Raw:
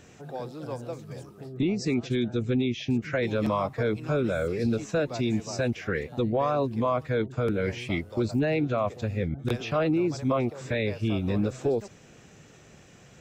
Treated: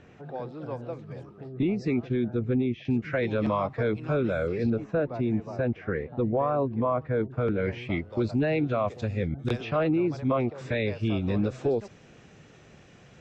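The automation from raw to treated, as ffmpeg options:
ffmpeg -i in.wav -af "asetnsamples=nb_out_samples=441:pad=0,asendcmd='2.02 lowpass f 1700;2.85 lowpass f 3300;4.7 lowpass f 1500;7.38 lowpass f 2600;8.13 lowpass f 4000;8.88 lowpass f 6500;9.61 lowpass f 3100;10.58 lowpass f 4700',lowpass=2600" out.wav

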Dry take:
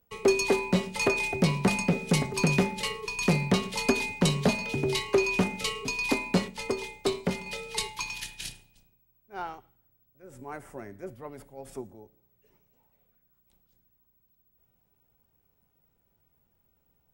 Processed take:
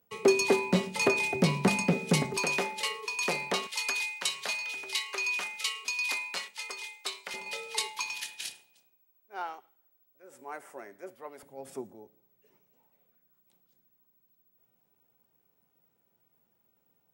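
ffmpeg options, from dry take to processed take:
ffmpeg -i in.wav -af "asetnsamples=nb_out_samples=441:pad=0,asendcmd='2.37 highpass f 520;3.67 highpass f 1400;7.34 highpass f 460;11.43 highpass f 180',highpass=140" out.wav

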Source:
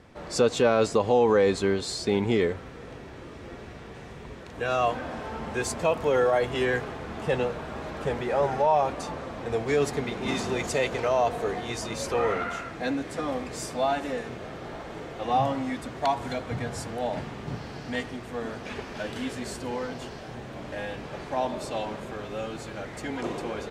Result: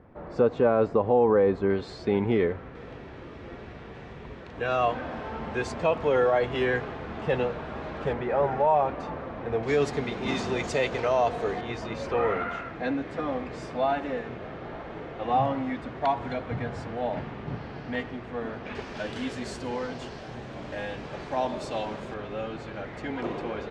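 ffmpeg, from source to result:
ffmpeg -i in.wav -af "asetnsamples=nb_out_samples=441:pad=0,asendcmd='1.7 lowpass f 2200;2.75 lowpass f 3700;8.13 lowpass f 2300;9.63 lowpass f 5500;11.61 lowpass f 2800;18.75 lowpass f 6500;22.14 lowpass f 3300',lowpass=1300" out.wav

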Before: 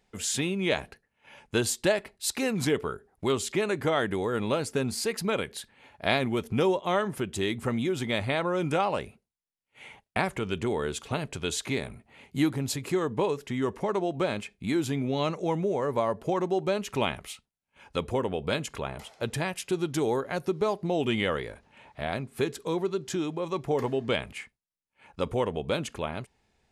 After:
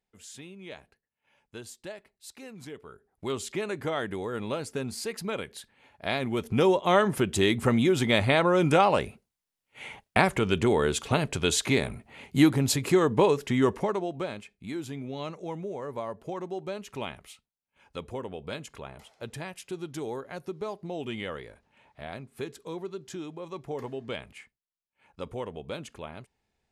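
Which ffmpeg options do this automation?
ffmpeg -i in.wav -af "volume=5.5dB,afade=type=in:start_time=2.84:duration=0.53:silence=0.251189,afade=type=in:start_time=6.12:duration=0.94:silence=0.316228,afade=type=out:start_time=13.66:duration=0.3:silence=0.421697,afade=type=out:start_time=13.96:duration=0.44:silence=0.501187" out.wav

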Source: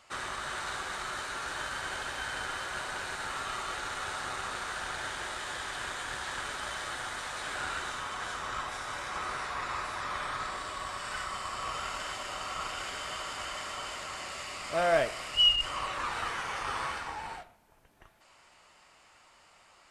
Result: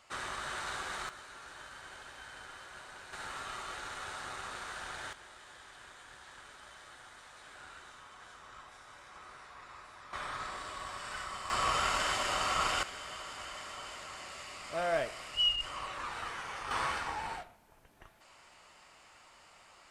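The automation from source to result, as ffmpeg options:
ffmpeg -i in.wav -af "asetnsamples=nb_out_samples=441:pad=0,asendcmd='1.09 volume volume -13dB;3.13 volume volume -6dB;5.13 volume volume -16dB;10.13 volume volume -4.5dB;11.5 volume volume 5.5dB;12.83 volume volume -6dB;16.71 volume volume 1dB',volume=-2.5dB" out.wav

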